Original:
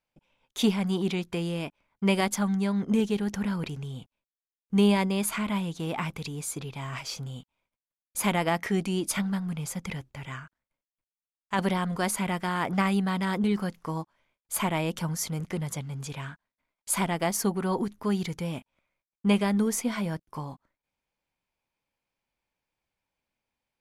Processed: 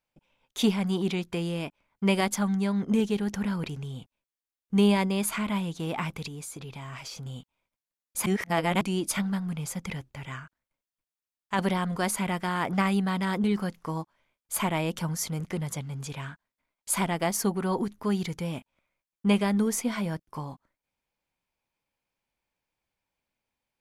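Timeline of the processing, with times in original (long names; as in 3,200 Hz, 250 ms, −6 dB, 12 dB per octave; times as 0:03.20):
0:06.27–0:07.26: downward compressor, threshold −36 dBFS
0:08.26–0:08.81: reverse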